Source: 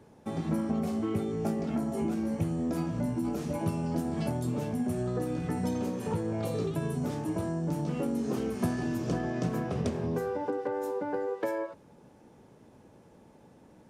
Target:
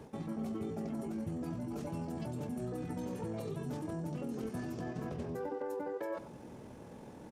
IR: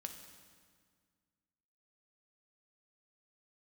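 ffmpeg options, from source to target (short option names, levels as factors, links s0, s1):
-af "areverse,acompressor=threshold=0.00794:ratio=16,areverse,atempo=1.9,aecho=1:1:95:0.188,volume=2.11"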